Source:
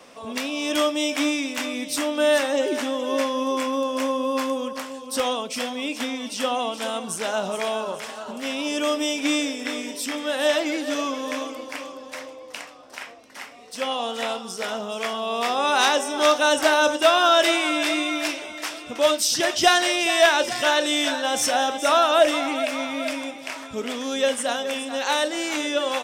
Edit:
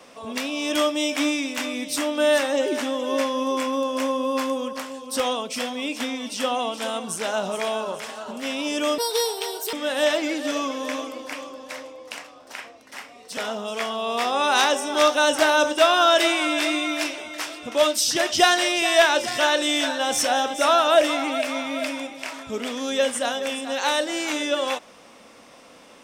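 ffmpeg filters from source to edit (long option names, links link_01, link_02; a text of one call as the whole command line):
ffmpeg -i in.wav -filter_complex "[0:a]asplit=4[link_01][link_02][link_03][link_04];[link_01]atrim=end=8.984[link_05];[link_02]atrim=start=8.98:end=10.16,asetpts=PTS-STARTPTS,asetrate=69237,aresample=44100,atrim=end_sample=33145,asetpts=PTS-STARTPTS[link_06];[link_03]atrim=start=10.156:end=13.802[link_07];[link_04]atrim=start=14.608[link_08];[link_05][link_06]acrossfade=duration=0.004:curve1=hsin:curve2=hsin[link_09];[link_09][link_07]acrossfade=duration=0.004:curve1=hsin:curve2=hsin[link_10];[link_10][link_08]acrossfade=duration=0.004:curve1=hsin:curve2=hsin" out.wav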